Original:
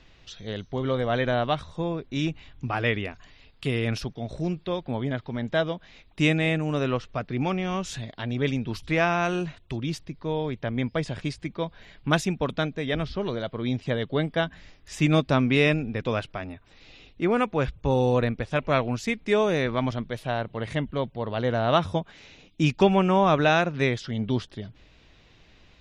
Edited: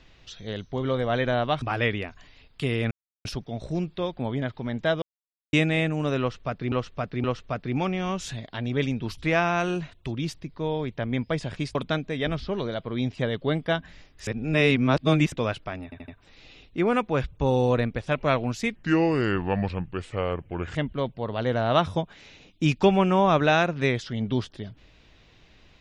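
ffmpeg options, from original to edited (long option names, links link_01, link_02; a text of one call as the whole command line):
ffmpeg -i in.wav -filter_complex "[0:a]asplit=15[link_01][link_02][link_03][link_04][link_05][link_06][link_07][link_08][link_09][link_10][link_11][link_12][link_13][link_14][link_15];[link_01]atrim=end=1.622[link_16];[link_02]atrim=start=2.648:end=3.94,asetpts=PTS-STARTPTS,afade=type=out:start_time=1.288:duration=0.004:curve=hsin,apad=pad_dur=0.34[link_17];[link_03]atrim=start=3.94:end=5.71,asetpts=PTS-STARTPTS,afade=type=in:duration=0.004:curve=hsin,afade=type=out:start_time=1.766:duration=0.004:curve=hsin[link_18];[link_04]atrim=start=5.71:end=6.22,asetpts=PTS-STARTPTS,volume=0[link_19];[link_05]atrim=start=6.22:end=7.412,asetpts=PTS-STARTPTS,afade=type=in:duration=0.004:curve=hsin[link_20];[link_06]atrim=start=6.888:end=7.412[link_21];[link_07]atrim=start=6.888:end=11.402[link_22];[link_08]atrim=start=12.428:end=14.952[link_23];[link_09]atrim=start=14.948:end=16.002,asetpts=PTS-STARTPTS,areverse[link_24];[link_10]atrim=start=15.998:end=16.602[link_25];[link_11]atrim=start=16.518:end=16.602[link_26];[link_12]atrim=start=16.518:end=16.602[link_27];[link_13]atrim=start=16.518:end=19.194[link_28];[link_14]atrim=start=19.19:end=20.73,asetpts=PTS-STARTPTS,asetrate=33957,aresample=44100[link_29];[link_15]atrim=start=20.726[link_30];[link_17][link_18][link_19][link_20]concat=n=4:v=0:a=1[link_31];[link_16][link_31]acrossfade=duration=0.004:curve1=hsin:curve2=hsin[link_32];[link_32][link_21]acrossfade=duration=0.004:curve1=hsin:curve2=hsin[link_33];[link_33][link_22]acrossfade=duration=0.004:curve1=hsin:curve2=hsin[link_34];[link_34][link_23]acrossfade=duration=0.004:curve1=hsin:curve2=hsin[link_35];[link_35][link_24]acrossfade=duration=0.004:curve1=hsin:curve2=hsin[link_36];[link_36][link_25]acrossfade=duration=0.004:curve1=hsin:curve2=hsin[link_37];[link_37][link_26]acrossfade=duration=0.004:curve1=hsin:curve2=hsin[link_38];[link_38][link_27]acrossfade=duration=0.004:curve1=hsin:curve2=hsin[link_39];[link_39][link_28]acrossfade=duration=0.004:curve1=hsin:curve2=hsin[link_40];[link_40][link_29]acrossfade=duration=0.004:curve1=hsin:curve2=hsin[link_41];[link_41][link_30]acrossfade=duration=0.004:curve1=hsin:curve2=hsin" out.wav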